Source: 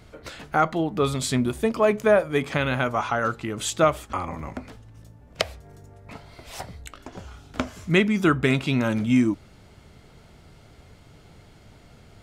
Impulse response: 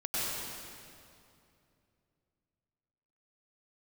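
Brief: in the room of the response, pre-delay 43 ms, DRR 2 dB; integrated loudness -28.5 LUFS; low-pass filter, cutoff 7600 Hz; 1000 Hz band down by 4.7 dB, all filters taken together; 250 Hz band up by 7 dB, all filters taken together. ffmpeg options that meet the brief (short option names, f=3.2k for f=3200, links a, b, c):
-filter_complex "[0:a]lowpass=7.6k,equalizer=f=250:t=o:g=8.5,equalizer=f=1k:t=o:g=-7.5,asplit=2[a][b];[1:a]atrim=start_sample=2205,adelay=43[c];[b][c]afir=irnorm=-1:irlink=0,volume=-9.5dB[d];[a][d]amix=inputs=2:normalize=0,volume=-10.5dB"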